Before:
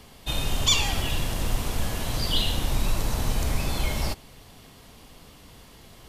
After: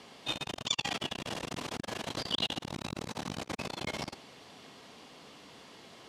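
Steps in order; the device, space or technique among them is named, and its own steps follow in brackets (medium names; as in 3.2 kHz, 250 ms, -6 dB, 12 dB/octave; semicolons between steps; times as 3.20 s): public-address speaker with an overloaded transformer (transformer saturation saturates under 270 Hz; band-pass 230–6200 Hz)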